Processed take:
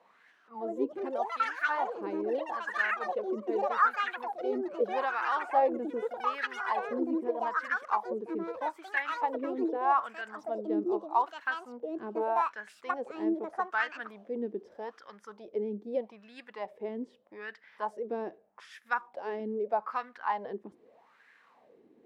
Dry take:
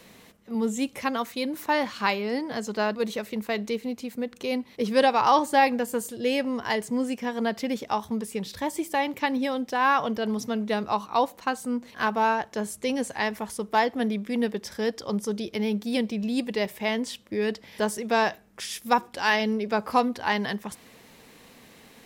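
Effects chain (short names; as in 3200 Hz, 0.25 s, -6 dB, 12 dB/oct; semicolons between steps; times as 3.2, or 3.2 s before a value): echoes that change speed 0.272 s, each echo +7 st, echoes 3; wah 0.81 Hz 330–1700 Hz, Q 5.1; gain +2.5 dB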